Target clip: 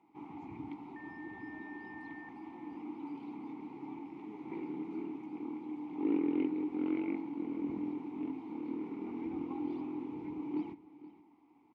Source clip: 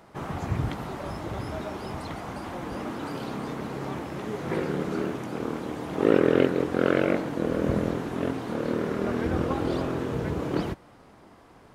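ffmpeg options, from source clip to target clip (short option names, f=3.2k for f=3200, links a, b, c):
-filter_complex "[0:a]asplit=3[a][b][c];[a]bandpass=f=300:t=q:w=8,volume=0dB[d];[b]bandpass=f=870:t=q:w=8,volume=-6dB[e];[c]bandpass=f=2.24k:t=q:w=8,volume=-9dB[f];[d][e][f]amix=inputs=3:normalize=0,asettb=1/sr,asplit=3[g][h][i];[g]atrim=end=0.964[j];[h]atrim=start=0.96:end=2.29,asetpts=PTS-STARTPTS,afade=t=in:d=0.004:c=qsin,afade=t=out:st=1.326:d=0.004:c=qsin,aeval=exprs='val(0)+0.00398*sin(2*PI*1800*n/s)':c=same[k];[i]atrim=start=2.286[l];[j][k]acrossfade=d=0.004:c1=hsin:c2=qsin[m];[m][l]acrossfade=d=0.004:c1=qsin:c2=hsin,aecho=1:1:475:0.15,volume=-2.5dB"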